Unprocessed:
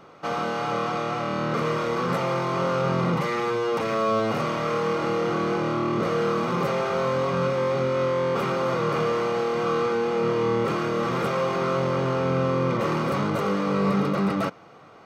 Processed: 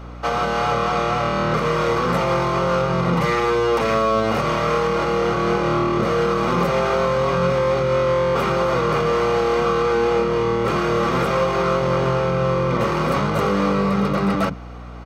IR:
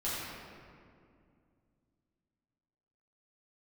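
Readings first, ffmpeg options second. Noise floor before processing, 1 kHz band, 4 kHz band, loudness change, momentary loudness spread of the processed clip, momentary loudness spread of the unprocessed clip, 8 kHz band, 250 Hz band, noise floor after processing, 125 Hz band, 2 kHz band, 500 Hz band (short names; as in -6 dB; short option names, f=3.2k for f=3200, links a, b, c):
-48 dBFS, +6.0 dB, +6.0 dB, +5.0 dB, 2 LU, 3 LU, +6.0 dB, +4.0 dB, -29 dBFS, +5.0 dB, +6.0 dB, +5.0 dB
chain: -filter_complex "[0:a]alimiter=limit=-17.5dB:level=0:latency=1:release=123,acrossover=split=270[a][b];[a]adelay=40[c];[c][b]amix=inputs=2:normalize=0,aeval=exprs='val(0)+0.00794*(sin(2*PI*60*n/s)+sin(2*PI*2*60*n/s)/2+sin(2*PI*3*60*n/s)/3+sin(2*PI*4*60*n/s)/4+sin(2*PI*5*60*n/s)/5)':c=same,volume=7.5dB"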